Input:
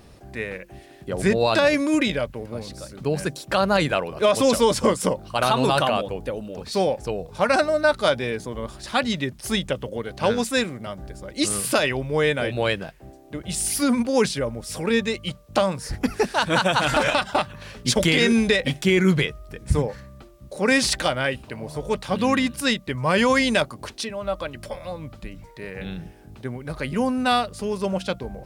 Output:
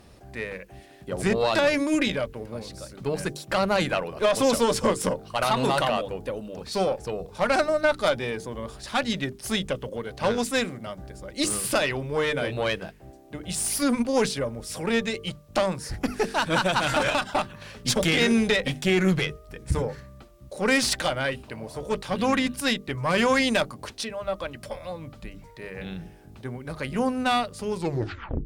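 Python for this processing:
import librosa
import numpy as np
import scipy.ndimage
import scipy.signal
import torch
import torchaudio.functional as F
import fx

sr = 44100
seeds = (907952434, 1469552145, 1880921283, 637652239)

y = fx.tape_stop_end(x, sr, length_s=0.72)
y = fx.tube_stage(y, sr, drive_db=12.0, bias=0.5)
y = fx.hum_notches(y, sr, base_hz=50, count=9)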